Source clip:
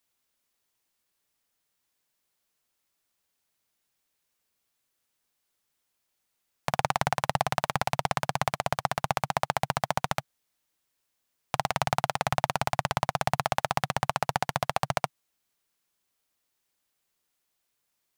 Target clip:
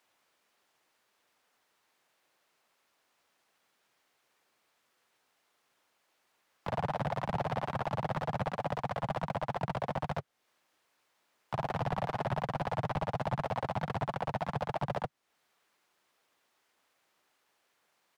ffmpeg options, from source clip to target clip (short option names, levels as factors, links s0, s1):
-filter_complex "[0:a]asplit=4[s0][s1][s2][s3];[s1]asetrate=29433,aresample=44100,atempo=1.49831,volume=0.251[s4];[s2]asetrate=37084,aresample=44100,atempo=1.18921,volume=0.708[s5];[s3]asetrate=52444,aresample=44100,atempo=0.840896,volume=0.355[s6];[s0][s4][s5][s6]amix=inputs=4:normalize=0,acrossover=split=250[s7][s8];[s8]acompressor=threshold=0.01:ratio=2[s9];[s7][s9]amix=inputs=2:normalize=0,asplit=2[s10][s11];[s11]highpass=f=720:p=1,volume=20,asoftclip=type=tanh:threshold=0.188[s12];[s10][s12]amix=inputs=2:normalize=0,lowpass=f=1100:p=1,volume=0.501,volume=0.501"